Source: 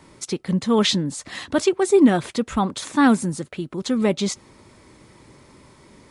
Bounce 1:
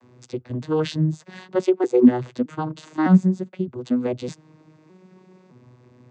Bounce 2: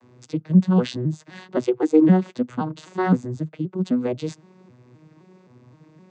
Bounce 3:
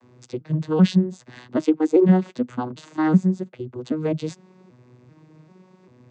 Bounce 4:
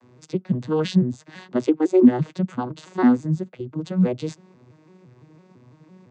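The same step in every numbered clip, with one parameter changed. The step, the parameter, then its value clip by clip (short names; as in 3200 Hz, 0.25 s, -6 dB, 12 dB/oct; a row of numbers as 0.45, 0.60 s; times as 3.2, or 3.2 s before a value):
arpeggiated vocoder, a note every: 0.611, 0.26, 0.391, 0.168 s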